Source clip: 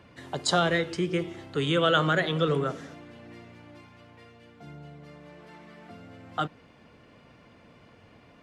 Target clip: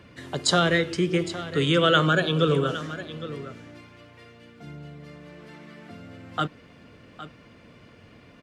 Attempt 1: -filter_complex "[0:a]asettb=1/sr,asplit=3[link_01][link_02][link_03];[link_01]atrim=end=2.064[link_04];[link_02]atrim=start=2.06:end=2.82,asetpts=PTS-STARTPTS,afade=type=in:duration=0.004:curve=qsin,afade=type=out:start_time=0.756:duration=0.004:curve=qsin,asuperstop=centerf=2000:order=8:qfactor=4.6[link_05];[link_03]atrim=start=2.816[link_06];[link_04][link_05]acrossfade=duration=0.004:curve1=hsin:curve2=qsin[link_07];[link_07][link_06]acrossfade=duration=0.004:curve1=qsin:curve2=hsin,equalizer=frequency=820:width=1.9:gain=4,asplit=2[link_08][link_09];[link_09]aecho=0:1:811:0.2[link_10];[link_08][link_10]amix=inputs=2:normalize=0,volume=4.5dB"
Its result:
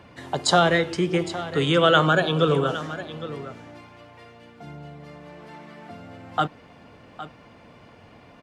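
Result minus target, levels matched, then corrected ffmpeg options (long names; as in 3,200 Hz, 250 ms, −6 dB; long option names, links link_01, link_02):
1,000 Hz band +2.5 dB
-filter_complex "[0:a]asettb=1/sr,asplit=3[link_01][link_02][link_03];[link_01]atrim=end=2.064[link_04];[link_02]atrim=start=2.06:end=2.82,asetpts=PTS-STARTPTS,afade=type=in:duration=0.004:curve=qsin,afade=type=out:start_time=0.756:duration=0.004:curve=qsin,asuperstop=centerf=2000:order=8:qfactor=4.6[link_05];[link_03]atrim=start=2.816[link_06];[link_04][link_05]acrossfade=duration=0.004:curve1=hsin:curve2=qsin[link_07];[link_07][link_06]acrossfade=duration=0.004:curve1=qsin:curve2=hsin,equalizer=frequency=820:width=1.9:gain=-6.5,asplit=2[link_08][link_09];[link_09]aecho=0:1:811:0.2[link_10];[link_08][link_10]amix=inputs=2:normalize=0,volume=4.5dB"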